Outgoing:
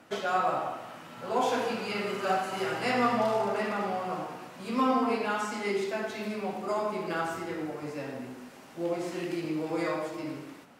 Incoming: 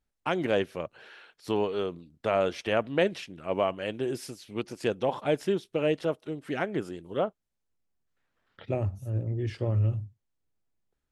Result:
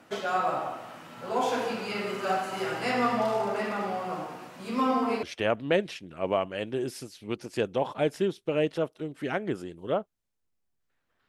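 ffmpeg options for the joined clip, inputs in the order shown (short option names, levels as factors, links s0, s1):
-filter_complex "[0:a]apad=whole_dur=11.28,atrim=end=11.28,atrim=end=5.232[s0];[1:a]atrim=start=2.498:end=8.55[s1];[s0][s1]acrossfade=d=0.004:c1=hsin:c2=hsin"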